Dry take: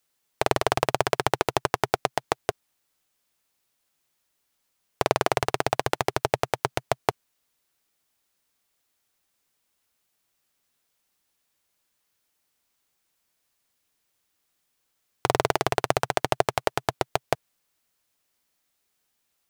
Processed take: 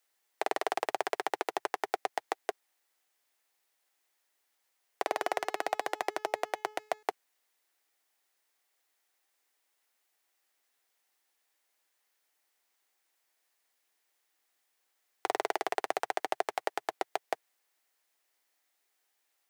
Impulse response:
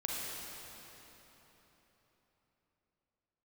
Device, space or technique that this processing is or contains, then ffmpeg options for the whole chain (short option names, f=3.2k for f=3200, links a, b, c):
laptop speaker: -filter_complex "[0:a]highpass=f=310:w=0.5412,highpass=f=310:w=1.3066,equalizer=f=780:t=o:w=0.37:g=5,equalizer=f=1.9k:t=o:w=0.49:g=5.5,alimiter=limit=-11.5dB:level=0:latency=1:release=16,asettb=1/sr,asplit=3[a][b][c];[a]atrim=end=5.054[d];[b]atrim=start=5.05:end=7.03,asetpts=PTS-STARTPTS,afade=t=in:d=0.004:c=qsin,afade=t=out:st=1.976:d=0.004:c=qsin,bandreject=f=426.6:t=h:w=4,bandreject=f=853.2:t=h:w=4,bandreject=f=1.2798k:t=h:w=4,bandreject=f=1.7064k:t=h:w=4,bandreject=f=2.133k:t=h:w=4,bandreject=f=2.5596k:t=h:w=4,bandreject=f=2.9862k:t=h:w=4,bandreject=f=3.4128k:t=h:w=4,bandreject=f=3.8394k:t=h:w=4,bandreject=f=4.266k:t=h:w=4,bandreject=f=4.6926k:t=h:w=4,bandreject=f=5.1192k:t=h:w=4,bandreject=f=5.5458k:t=h:w=4,bandreject=f=5.9724k:t=h:w=4,bandreject=f=6.399k:t=h:w=4,bandreject=f=6.8256k:t=h:w=4,bandreject=f=7.2522k:t=h:w=4,bandreject=f=7.6788k:t=h:w=4[e];[c]atrim=start=7.026[f];[d][e]acrossfade=d=0.004:c1=hsin:c2=qsin[g];[g][f]acrossfade=d=0.004:c1=qsin:c2=hsin,volume=-3dB"